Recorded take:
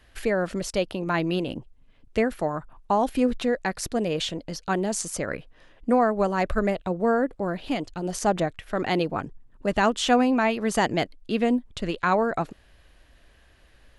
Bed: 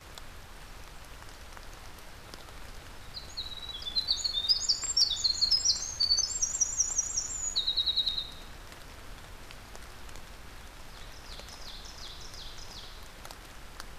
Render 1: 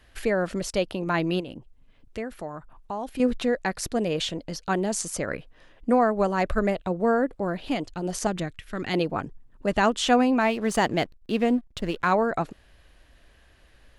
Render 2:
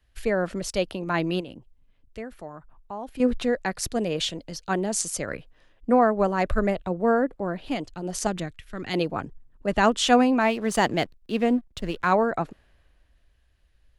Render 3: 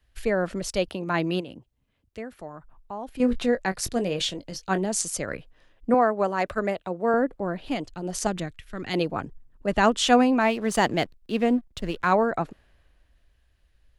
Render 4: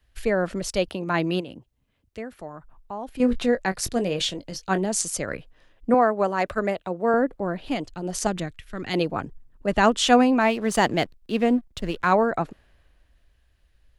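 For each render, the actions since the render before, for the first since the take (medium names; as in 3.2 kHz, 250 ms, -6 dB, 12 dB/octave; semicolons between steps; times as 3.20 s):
1.40–3.20 s: compression 1.5:1, threshold -46 dBFS; 8.27–8.94 s: peaking EQ 700 Hz -11 dB 1.6 oct; 10.40–12.12 s: hysteresis with a dead band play -40.5 dBFS
three bands expanded up and down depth 40%
0.88–2.41 s: high-pass 64 Hz; 3.21–4.85 s: doubling 21 ms -10.5 dB; 5.94–7.14 s: high-pass 330 Hz 6 dB/octave
trim +1.5 dB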